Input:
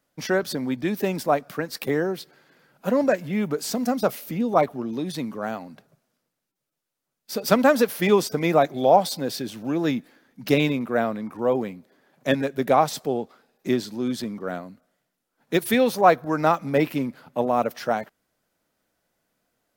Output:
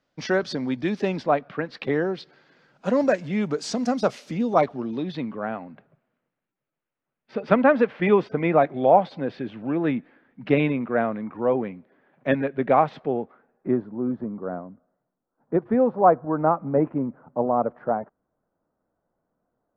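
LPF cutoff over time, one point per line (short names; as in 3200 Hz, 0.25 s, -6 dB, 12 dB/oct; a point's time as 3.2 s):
LPF 24 dB/oct
1 s 5500 Hz
1.49 s 3100 Hz
2.87 s 6800 Hz
4.47 s 6800 Hz
5.48 s 2600 Hz
13.05 s 2600 Hz
13.9 s 1200 Hz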